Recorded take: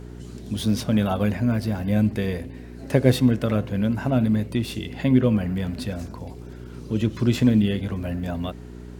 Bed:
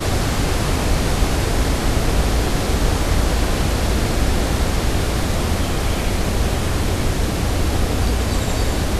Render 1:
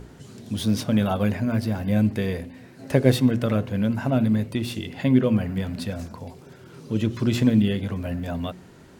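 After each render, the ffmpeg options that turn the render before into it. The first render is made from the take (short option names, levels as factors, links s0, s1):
-af "bandreject=f=60:t=h:w=4,bandreject=f=120:t=h:w=4,bandreject=f=180:t=h:w=4,bandreject=f=240:t=h:w=4,bandreject=f=300:t=h:w=4,bandreject=f=360:t=h:w=4,bandreject=f=420:t=h:w=4"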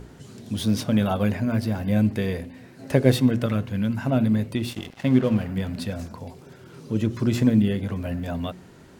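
-filter_complex "[0:a]asettb=1/sr,asplit=3[s0][s1][s2];[s0]atrim=end=3.464[s3];[s1]atrim=start=3.46:end=4.07,asetpts=PTS-STARTPTS,afade=t=in:d=0.004:c=qsin,afade=t=out:st=0.606:d=0.004:c=qsin,equalizer=f=540:w=0.91:g=-6.5[s4];[s2]atrim=start=4.066[s5];[s3][s4]acrossfade=d=0.004:c1=hsin:c2=qsin[s6];[s6][s5]acrossfade=d=0.004:c1=qsin:c2=hsin,asettb=1/sr,asplit=3[s7][s8][s9];[s7]atrim=end=4.704[s10];[s8]atrim=start=4.7:end=5.51,asetpts=PTS-STARTPTS,afade=t=in:d=0.004:c=qsin,afade=t=out:st=0.806:d=0.004:c=qsin,aeval=exprs='sgn(val(0))*max(abs(val(0))-0.0133,0)':c=same[s11];[s9]atrim=start=5.506[s12];[s10][s11]acrossfade=d=0.004:c1=hsin:c2=qsin[s13];[s13][s12]acrossfade=d=0.004:c1=qsin:c2=hsin,asettb=1/sr,asplit=3[s14][s15][s16];[s14]atrim=end=6.914[s17];[s15]atrim=start=6.91:end=7.89,asetpts=PTS-STARTPTS,afade=t=in:d=0.004:c=qsin,afade=t=out:st=0.976:d=0.004:c=qsin,equalizer=f=3200:w=1.5:g=-5[s18];[s16]atrim=start=7.886[s19];[s17][s18]acrossfade=d=0.004:c1=hsin:c2=qsin[s20];[s20][s19]acrossfade=d=0.004:c1=qsin:c2=hsin"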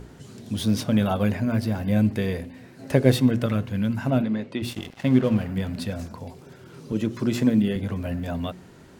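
-filter_complex "[0:a]asplit=3[s0][s1][s2];[s0]afade=t=out:st=4.21:d=0.02[s3];[s1]highpass=240,lowpass=4200,afade=t=in:st=4.21:d=0.02,afade=t=out:st=4.61:d=0.02[s4];[s2]afade=t=in:st=4.61:d=0.02[s5];[s3][s4][s5]amix=inputs=3:normalize=0,asettb=1/sr,asplit=3[s6][s7][s8];[s6]atrim=end=6.924[s9];[s7]atrim=start=6.92:end=7.76,asetpts=PTS-STARTPTS,afade=t=in:d=0.004:c=qsin,afade=t=out:st=0.836:d=0.004:c=qsin,highpass=150[s10];[s8]atrim=start=7.756[s11];[s9][s10]acrossfade=d=0.004:c1=hsin:c2=qsin[s12];[s12][s11]acrossfade=d=0.004:c1=qsin:c2=hsin"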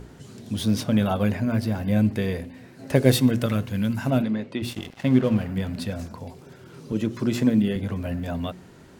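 -filter_complex "[0:a]asettb=1/sr,asplit=3[s0][s1][s2];[s0]atrim=end=2.954[s3];[s1]atrim=start=2.95:end=4.31,asetpts=PTS-STARTPTS,afade=t=in:d=0.004:c=qsin,afade=t=out:st=1.356:d=0.004:c=qsin,highshelf=f=4300:g=8[s4];[s2]atrim=start=4.306[s5];[s3][s4]acrossfade=d=0.004:c1=hsin:c2=qsin[s6];[s6][s5]acrossfade=d=0.004:c1=qsin:c2=hsin"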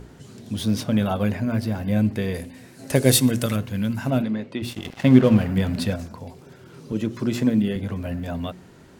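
-filter_complex "[0:a]asettb=1/sr,asplit=3[s0][s1][s2];[s0]atrim=end=2.344[s3];[s1]atrim=start=2.34:end=3.56,asetpts=PTS-STARTPTS,afade=t=in:d=0.004:c=qsin,afade=t=out:st=1.216:d=0.004:c=qsin,equalizer=f=9600:w=0.5:g=11.5[s4];[s2]atrim=start=3.556[s5];[s3][s4]acrossfade=d=0.004:c1=hsin:c2=qsin[s6];[s6][s5]acrossfade=d=0.004:c1=qsin:c2=hsin,asplit=3[s7][s8][s9];[s7]atrim=end=4.852[s10];[s8]atrim=start=4.848:end=5.962,asetpts=PTS-STARTPTS,volume=1.88[s11];[s9]atrim=start=5.958[s12];[s10][s11]acrossfade=d=0.004:c1=hsin:c2=hsin[s13];[s13][s12]acrossfade=d=0.004:c1=hsin:c2=hsin"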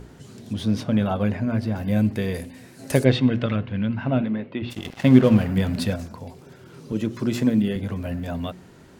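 -filter_complex "[0:a]asettb=1/sr,asplit=3[s0][s1][s2];[s0]atrim=end=0.534[s3];[s1]atrim=start=0.53:end=1.76,asetpts=PTS-STARTPTS,afade=t=in:d=0.004:c=qsin,afade=t=out:st=1.226:d=0.004:c=qsin,aemphasis=mode=reproduction:type=50kf[s4];[s2]atrim=start=1.756[s5];[s3][s4]acrossfade=d=0.004:c1=hsin:c2=qsin[s6];[s6][s5]acrossfade=d=0.004:c1=qsin:c2=hsin,asplit=3[s7][s8][s9];[s7]afade=t=out:st=3.03:d=0.02[s10];[s8]lowpass=f=3300:w=0.5412,lowpass=f=3300:w=1.3066,afade=t=in:st=3.03:d=0.02,afade=t=out:st=4.7:d=0.02[s11];[s9]afade=t=in:st=4.7:d=0.02[s12];[s10][s11][s12]amix=inputs=3:normalize=0"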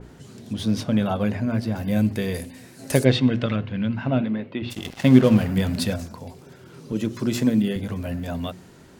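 -af "bandreject=f=50:t=h:w=6,bandreject=f=100:t=h:w=6,adynamicequalizer=threshold=0.00562:dfrequency=3600:dqfactor=0.7:tfrequency=3600:tqfactor=0.7:attack=5:release=100:ratio=0.375:range=2.5:mode=boostabove:tftype=highshelf"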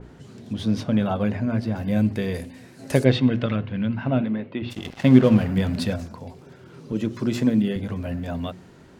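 -af "lowpass=f=3700:p=1"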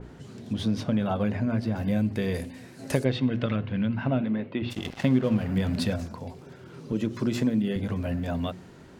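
-af "acompressor=threshold=0.0708:ratio=2.5"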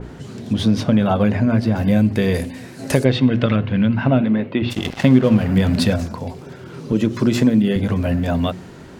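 -af "volume=3.16,alimiter=limit=0.891:level=0:latency=1"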